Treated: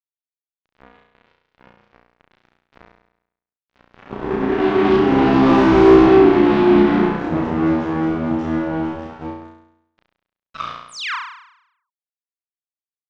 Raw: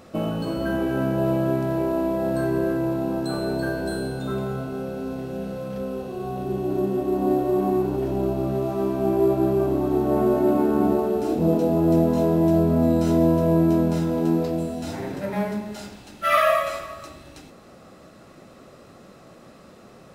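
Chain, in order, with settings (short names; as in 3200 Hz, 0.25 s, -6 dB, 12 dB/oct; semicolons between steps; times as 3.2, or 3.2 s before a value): Doppler pass-by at 8.59, 8 m/s, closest 4.1 m; HPF 150 Hz 24 dB/oct; high shelf 5100 Hz -3.5 dB; notches 50/100/150/200 Hz; AGC gain up to 7 dB; fixed phaser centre 2800 Hz, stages 8; time stretch by phase-locked vocoder 0.65×; fuzz box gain 30 dB, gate -37 dBFS; painted sound fall, 10.88–11.16, 890–11000 Hz -26 dBFS; air absorption 210 m; flutter echo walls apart 5.8 m, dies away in 0.77 s; gain +1.5 dB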